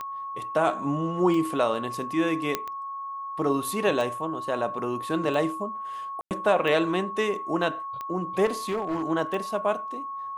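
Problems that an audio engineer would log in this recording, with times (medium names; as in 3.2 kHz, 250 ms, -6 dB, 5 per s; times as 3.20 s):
tick 45 rpm -21 dBFS
whine 1.1 kHz -32 dBFS
2.55 s: pop -10 dBFS
6.21–6.31 s: dropout 98 ms
8.45–9.04 s: clipped -23.5 dBFS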